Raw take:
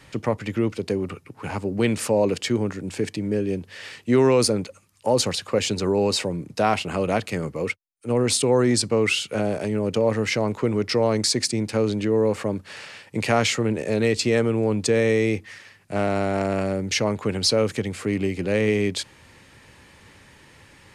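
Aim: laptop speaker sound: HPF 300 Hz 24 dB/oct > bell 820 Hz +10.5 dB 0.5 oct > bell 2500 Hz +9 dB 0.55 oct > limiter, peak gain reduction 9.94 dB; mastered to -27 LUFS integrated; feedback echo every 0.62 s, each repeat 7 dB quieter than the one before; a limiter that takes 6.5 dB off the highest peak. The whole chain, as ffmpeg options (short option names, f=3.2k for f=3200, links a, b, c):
-af "alimiter=limit=-13.5dB:level=0:latency=1,highpass=f=300:w=0.5412,highpass=f=300:w=1.3066,equalizer=f=820:t=o:w=0.5:g=10.5,equalizer=f=2.5k:t=o:w=0.55:g=9,aecho=1:1:620|1240|1860|2480|3100:0.447|0.201|0.0905|0.0407|0.0183,volume=-1dB,alimiter=limit=-17dB:level=0:latency=1"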